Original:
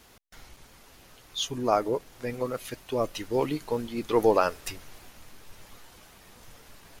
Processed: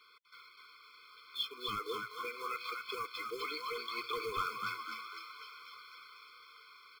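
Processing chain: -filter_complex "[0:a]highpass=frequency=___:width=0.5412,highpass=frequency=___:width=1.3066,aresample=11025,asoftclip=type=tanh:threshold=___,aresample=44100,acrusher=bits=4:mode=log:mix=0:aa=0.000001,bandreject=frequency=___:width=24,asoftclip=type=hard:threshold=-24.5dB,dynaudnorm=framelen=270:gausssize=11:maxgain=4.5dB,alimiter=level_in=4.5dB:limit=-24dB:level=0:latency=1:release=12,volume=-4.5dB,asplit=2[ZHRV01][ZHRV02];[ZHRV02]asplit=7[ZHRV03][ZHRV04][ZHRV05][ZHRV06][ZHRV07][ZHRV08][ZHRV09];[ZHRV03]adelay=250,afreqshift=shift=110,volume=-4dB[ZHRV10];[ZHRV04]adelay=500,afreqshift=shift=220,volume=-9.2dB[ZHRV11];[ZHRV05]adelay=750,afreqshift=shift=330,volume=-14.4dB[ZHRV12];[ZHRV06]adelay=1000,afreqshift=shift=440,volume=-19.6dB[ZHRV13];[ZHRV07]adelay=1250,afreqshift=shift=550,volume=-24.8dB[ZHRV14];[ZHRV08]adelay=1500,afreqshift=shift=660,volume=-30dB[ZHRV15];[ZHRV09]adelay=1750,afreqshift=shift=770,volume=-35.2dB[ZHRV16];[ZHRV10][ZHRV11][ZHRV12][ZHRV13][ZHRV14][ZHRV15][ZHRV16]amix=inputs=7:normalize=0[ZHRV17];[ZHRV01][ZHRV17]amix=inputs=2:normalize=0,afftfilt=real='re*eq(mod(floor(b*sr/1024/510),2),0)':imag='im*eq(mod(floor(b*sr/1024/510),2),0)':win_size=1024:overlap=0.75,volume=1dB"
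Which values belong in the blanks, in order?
660, 660, -19.5dB, 3100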